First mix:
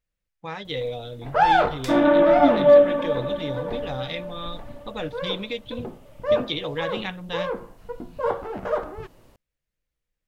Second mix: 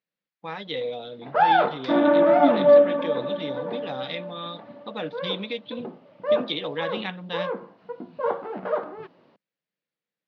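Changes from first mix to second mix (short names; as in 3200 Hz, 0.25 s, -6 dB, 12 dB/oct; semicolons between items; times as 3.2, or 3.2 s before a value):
first sound: add air absorption 150 m; second sound: add air absorption 270 m; master: add Chebyshev band-pass 180–4600 Hz, order 3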